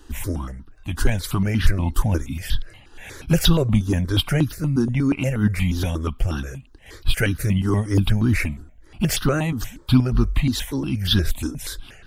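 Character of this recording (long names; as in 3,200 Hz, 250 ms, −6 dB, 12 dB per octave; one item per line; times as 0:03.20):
notches that jump at a steady rate 8.4 Hz 600–2,200 Hz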